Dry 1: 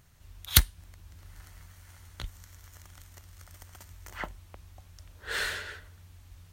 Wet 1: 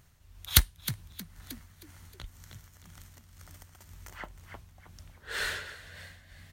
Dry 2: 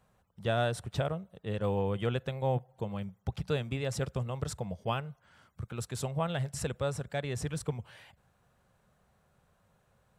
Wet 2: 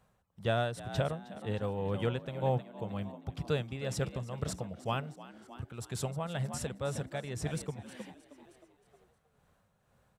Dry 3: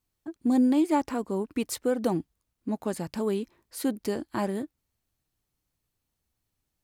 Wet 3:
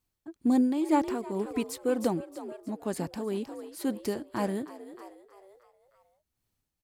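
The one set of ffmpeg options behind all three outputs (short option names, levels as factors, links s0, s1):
-filter_complex "[0:a]asplit=6[s0][s1][s2][s3][s4][s5];[s1]adelay=313,afreqshift=63,volume=0.237[s6];[s2]adelay=626,afreqshift=126,volume=0.116[s7];[s3]adelay=939,afreqshift=189,volume=0.0569[s8];[s4]adelay=1252,afreqshift=252,volume=0.0279[s9];[s5]adelay=1565,afreqshift=315,volume=0.0136[s10];[s0][s6][s7][s8][s9][s10]amix=inputs=6:normalize=0,tremolo=f=2:d=0.5"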